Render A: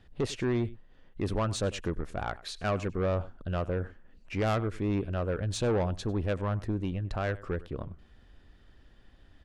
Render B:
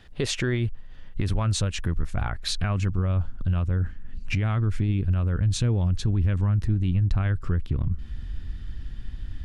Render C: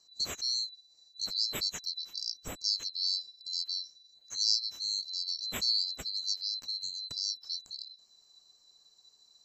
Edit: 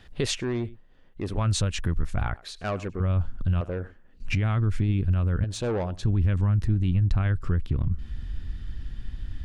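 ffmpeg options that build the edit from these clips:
-filter_complex "[0:a]asplit=4[s0][s1][s2][s3];[1:a]asplit=5[s4][s5][s6][s7][s8];[s4]atrim=end=0.382[s9];[s0]atrim=start=0.378:end=1.372[s10];[s5]atrim=start=1.368:end=2.342[s11];[s1]atrim=start=2.338:end=3.002[s12];[s6]atrim=start=2.998:end=3.612[s13];[s2]atrim=start=3.608:end=4.202[s14];[s7]atrim=start=4.198:end=5.442[s15];[s3]atrim=start=5.438:end=6.032[s16];[s8]atrim=start=6.028[s17];[s9][s10]acrossfade=d=0.004:c1=hsin:c2=hsin[s18];[s18][s11]acrossfade=d=0.004:c1=hsin:c2=hsin[s19];[s19][s12]acrossfade=d=0.004:c1=hsin:c2=hsin[s20];[s20][s13]acrossfade=d=0.004:c1=hsin:c2=hsin[s21];[s21][s14]acrossfade=d=0.004:c1=hsin:c2=hsin[s22];[s22][s15]acrossfade=d=0.004:c1=hsin:c2=hsin[s23];[s23][s16]acrossfade=d=0.004:c1=hsin:c2=hsin[s24];[s24][s17]acrossfade=d=0.004:c1=hsin:c2=hsin"

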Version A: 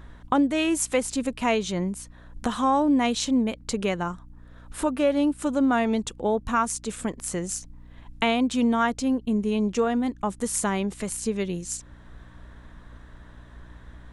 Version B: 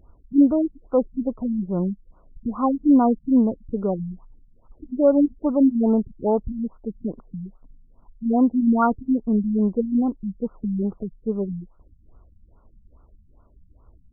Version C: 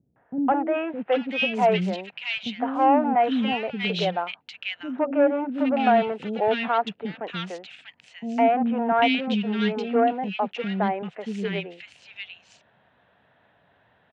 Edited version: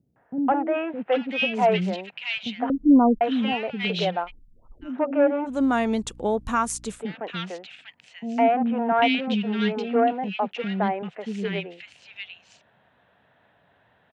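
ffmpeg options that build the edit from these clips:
-filter_complex "[1:a]asplit=2[s0][s1];[2:a]asplit=4[s2][s3][s4][s5];[s2]atrim=end=2.702[s6];[s0]atrim=start=2.698:end=3.212[s7];[s3]atrim=start=3.208:end=4.32[s8];[s1]atrim=start=4.22:end=4.91[s9];[s4]atrim=start=4.81:end=5.61[s10];[0:a]atrim=start=5.45:end=7.03[s11];[s5]atrim=start=6.87[s12];[s6][s7]acrossfade=d=0.004:c1=hsin:c2=hsin[s13];[s13][s8]acrossfade=d=0.004:c1=hsin:c2=hsin[s14];[s14][s9]acrossfade=d=0.1:c1=tri:c2=tri[s15];[s15][s10]acrossfade=d=0.1:c1=tri:c2=tri[s16];[s16][s11]acrossfade=d=0.16:c1=tri:c2=tri[s17];[s17][s12]acrossfade=d=0.16:c1=tri:c2=tri"

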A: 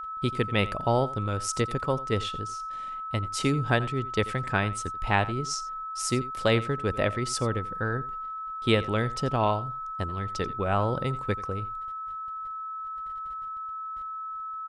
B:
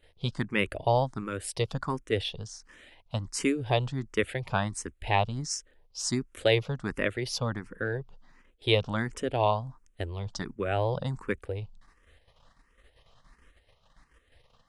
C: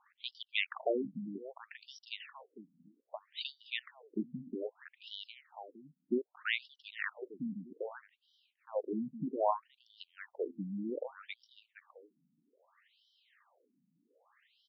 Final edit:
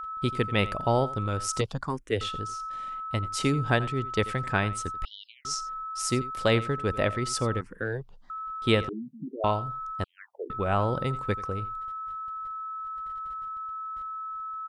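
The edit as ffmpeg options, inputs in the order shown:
-filter_complex "[1:a]asplit=2[s0][s1];[2:a]asplit=3[s2][s3][s4];[0:a]asplit=6[s5][s6][s7][s8][s9][s10];[s5]atrim=end=1.612[s11];[s0]atrim=start=1.608:end=2.212[s12];[s6]atrim=start=2.208:end=5.052[s13];[s2]atrim=start=5.048:end=5.452[s14];[s7]atrim=start=5.448:end=7.612[s15];[s1]atrim=start=7.608:end=8.302[s16];[s8]atrim=start=8.298:end=8.892[s17];[s3]atrim=start=8.888:end=9.442[s18];[s9]atrim=start=9.438:end=10.042[s19];[s4]atrim=start=10.038:end=10.502[s20];[s10]atrim=start=10.498[s21];[s11][s12]acrossfade=d=0.004:c1=hsin:c2=hsin[s22];[s22][s13]acrossfade=d=0.004:c1=hsin:c2=hsin[s23];[s23][s14]acrossfade=d=0.004:c1=hsin:c2=hsin[s24];[s24][s15]acrossfade=d=0.004:c1=hsin:c2=hsin[s25];[s25][s16]acrossfade=d=0.004:c1=hsin:c2=hsin[s26];[s26][s17]acrossfade=d=0.004:c1=hsin:c2=hsin[s27];[s27][s18]acrossfade=d=0.004:c1=hsin:c2=hsin[s28];[s28][s19]acrossfade=d=0.004:c1=hsin:c2=hsin[s29];[s29][s20]acrossfade=d=0.004:c1=hsin:c2=hsin[s30];[s30][s21]acrossfade=d=0.004:c1=hsin:c2=hsin"

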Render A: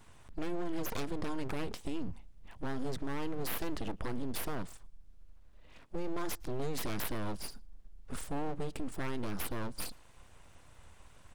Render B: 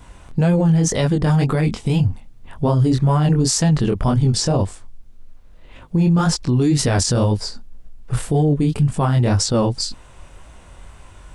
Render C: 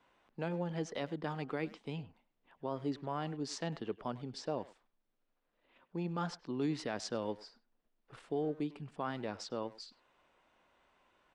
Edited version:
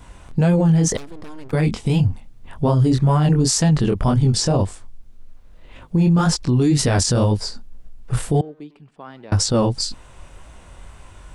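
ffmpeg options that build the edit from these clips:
-filter_complex "[1:a]asplit=3[s0][s1][s2];[s0]atrim=end=0.972[s3];[0:a]atrim=start=0.968:end=1.532[s4];[s1]atrim=start=1.528:end=8.412[s5];[2:a]atrim=start=8.408:end=9.322[s6];[s2]atrim=start=9.318[s7];[s3][s4]acrossfade=d=0.004:c1=hsin:c2=hsin[s8];[s8][s5]acrossfade=d=0.004:c1=hsin:c2=hsin[s9];[s9][s6]acrossfade=d=0.004:c1=hsin:c2=hsin[s10];[s10][s7]acrossfade=d=0.004:c1=hsin:c2=hsin"

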